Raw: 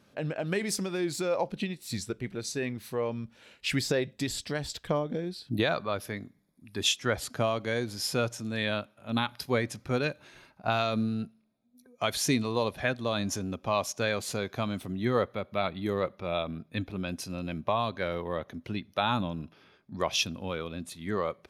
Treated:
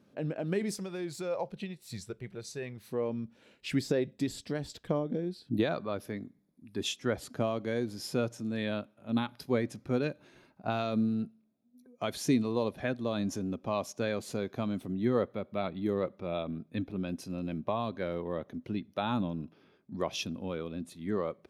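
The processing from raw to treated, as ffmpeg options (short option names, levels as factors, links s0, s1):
-filter_complex "[0:a]asettb=1/sr,asplit=3[s0][s1][s2];[s0]atrim=end=0.744[s3];[s1]atrim=start=0.74:end=2.88,asetpts=PTS-STARTPTS,afade=t=in:d=0.004:c=qsin,afade=t=out:st=2.136:d=0.004:c=qsin,equalizer=f=270:t=o:w=0.77:g=-15[s4];[s2]atrim=start=2.876[s5];[s3][s4]acrossfade=d=0.004:c1=hsin:c2=qsin[s6];[s6][s5]acrossfade=d=0.004:c1=qsin:c2=hsin,equalizer=f=270:t=o:w=2.5:g=10.5,volume=0.355"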